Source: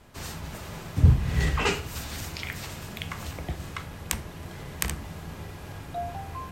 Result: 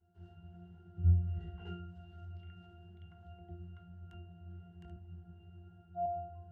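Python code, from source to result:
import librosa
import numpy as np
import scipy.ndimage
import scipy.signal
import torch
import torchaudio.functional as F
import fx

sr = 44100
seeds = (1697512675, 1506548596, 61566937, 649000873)

y = fx.octave_resonator(x, sr, note='F', decay_s=0.73)
y = fx.band_widen(y, sr, depth_pct=40, at=(4.96, 6.06))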